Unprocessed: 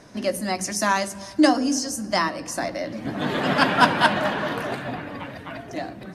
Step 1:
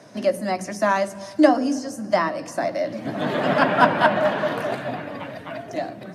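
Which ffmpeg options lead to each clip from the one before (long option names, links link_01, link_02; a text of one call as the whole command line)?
ffmpeg -i in.wav -filter_complex "[0:a]highpass=frequency=100:width=0.5412,highpass=frequency=100:width=1.3066,equalizer=frequency=620:width=3.9:gain=7,acrossover=split=370|2600[link_01][link_02][link_03];[link_03]acompressor=threshold=-40dB:ratio=4[link_04];[link_01][link_02][link_04]amix=inputs=3:normalize=0" out.wav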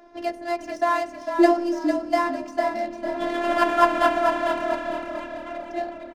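ffmpeg -i in.wav -filter_complex "[0:a]adynamicsmooth=sensitivity=6.5:basefreq=2200,afftfilt=real='hypot(re,im)*cos(PI*b)':imag='0':win_size=512:overlap=0.75,asplit=5[link_01][link_02][link_03][link_04][link_05];[link_02]adelay=451,afreqshift=-38,volume=-7dB[link_06];[link_03]adelay=902,afreqshift=-76,volume=-16.6dB[link_07];[link_04]adelay=1353,afreqshift=-114,volume=-26.3dB[link_08];[link_05]adelay=1804,afreqshift=-152,volume=-35.9dB[link_09];[link_01][link_06][link_07][link_08][link_09]amix=inputs=5:normalize=0,volume=1dB" out.wav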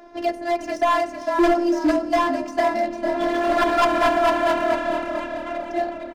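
ffmpeg -i in.wav -af "asoftclip=type=hard:threshold=-18.5dB,volume=5dB" out.wav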